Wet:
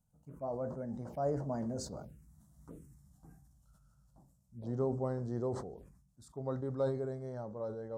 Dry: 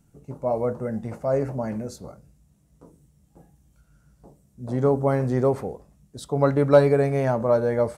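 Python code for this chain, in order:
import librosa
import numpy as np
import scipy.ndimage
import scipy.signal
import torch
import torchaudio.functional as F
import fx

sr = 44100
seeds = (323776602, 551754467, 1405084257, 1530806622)

y = fx.doppler_pass(x, sr, speed_mps=20, closest_m=9.6, pass_at_s=2.66)
y = fx.env_phaser(y, sr, low_hz=330.0, high_hz=2500.0, full_db=-39.5)
y = fx.sustainer(y, sr, db_per_s=67.0)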